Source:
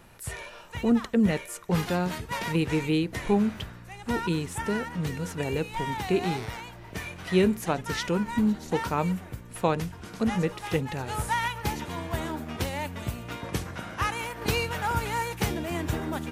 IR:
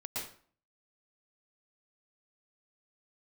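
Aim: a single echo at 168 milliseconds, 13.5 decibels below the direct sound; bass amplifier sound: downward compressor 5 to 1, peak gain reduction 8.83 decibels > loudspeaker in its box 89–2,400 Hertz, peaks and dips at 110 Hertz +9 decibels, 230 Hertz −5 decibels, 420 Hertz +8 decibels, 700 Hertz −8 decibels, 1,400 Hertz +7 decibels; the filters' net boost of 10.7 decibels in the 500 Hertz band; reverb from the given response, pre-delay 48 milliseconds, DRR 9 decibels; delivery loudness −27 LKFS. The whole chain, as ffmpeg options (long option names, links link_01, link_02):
-filter_complex "[0:a]equalizer=frequency=500:width_type=o:gain=8,aecho=1:1:168:0.211,asplit=2[link_01][link_02];[1:a]atrim=start_sample=2205,adelay=48[link_03];[link_02][link_03]afir=irnorm=-1:irlink=0,volume=-10.5dB[link_04];[link_01][link_04]amix=inputs=2:normalize=0,acompressor=threshold=-22dB:ratio=5,highpass=frequency=89:width=0.5412,highpass=frequency=89:width=1.3066,equalizer=frequency=110:width_type=q:width=4:gain=9,equalizer=frequency=230:width_type=q:width=4:gain=-5,equalizer=frequency=420:width_type=q:width=4:gain=8,equalizer=frequency=700:width_type=q:width=4:gain=-8,equalizer=frequency=1400:width_type=q:width=4:gain=7,lowpass=frequency=2400:width=0.5412,lowpass=frequency=2400:width=1.3066,volume=-1dB"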